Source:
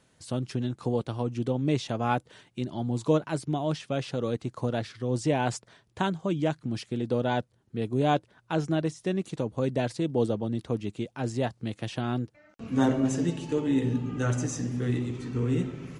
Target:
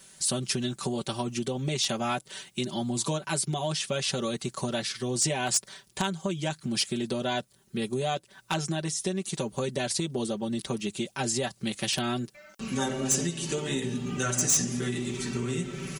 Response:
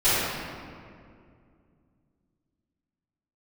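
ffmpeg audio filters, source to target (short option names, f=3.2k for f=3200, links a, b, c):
-af "aecho=1:1:5.2:0.97,acompressor=threshold=-27dB:ratio=10,crystalizer=i=6:c=0,aeval=exprs='0.158*(abs(mod(val(0)/0.158+3,4)-2)-1)':c=same"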